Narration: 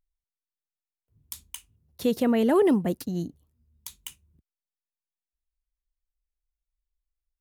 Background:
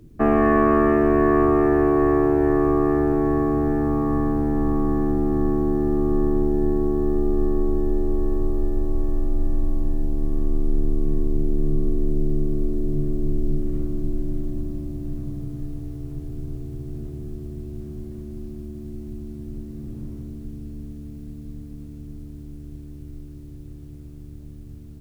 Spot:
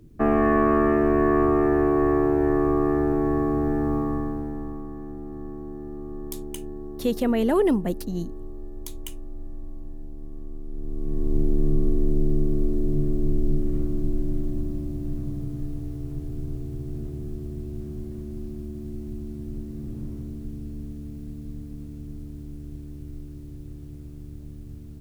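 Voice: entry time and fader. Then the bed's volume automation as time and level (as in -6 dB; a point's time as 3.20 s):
5.00 s, 0.0 dB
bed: 3.96 s -2.5 dB
4.90 s -15 dB
10.67 s -15 dB
11.37 s 0 dB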